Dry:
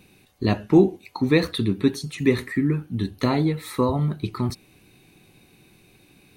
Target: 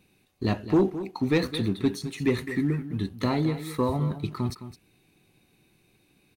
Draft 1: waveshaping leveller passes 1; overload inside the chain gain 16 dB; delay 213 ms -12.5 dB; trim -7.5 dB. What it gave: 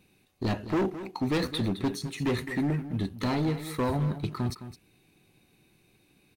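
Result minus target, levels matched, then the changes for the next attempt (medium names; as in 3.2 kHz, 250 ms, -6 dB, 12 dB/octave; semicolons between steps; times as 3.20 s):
overload inside the chain: distortion +16 dB
change: overload inside the chain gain 8 dB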